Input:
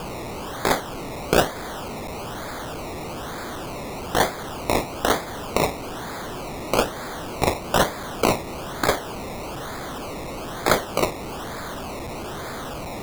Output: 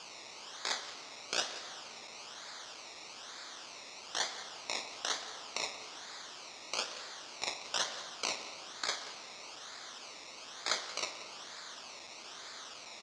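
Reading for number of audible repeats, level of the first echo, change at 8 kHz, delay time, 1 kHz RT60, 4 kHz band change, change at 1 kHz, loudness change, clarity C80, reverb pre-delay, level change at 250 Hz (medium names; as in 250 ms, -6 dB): 1, -15.0 dB, -7.5 dB, 179 ms, 2.5 s, -6.0 dB, -18.5 dB, -13.5 dB, 9.5 dB, 3 ms, -28.5 dB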